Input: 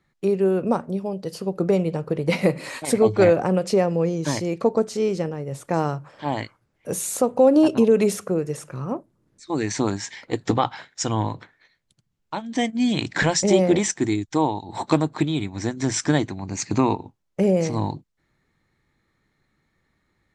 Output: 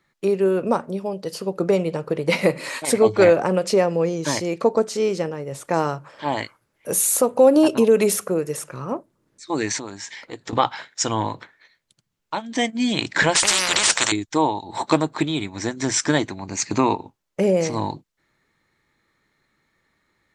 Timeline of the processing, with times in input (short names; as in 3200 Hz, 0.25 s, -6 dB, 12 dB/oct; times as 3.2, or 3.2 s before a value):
6.37–8.64 bell 11000 Hz +8 dB 0.5 oct
9.78–10.53 compressor 2:1, threshold -39 dBFS
13.35–14.12 spectral compressor 10:1
whole clip: low shelf 260 Hz -10.5 dB; notch 750 Hz, Q 15; gain +4.5 dB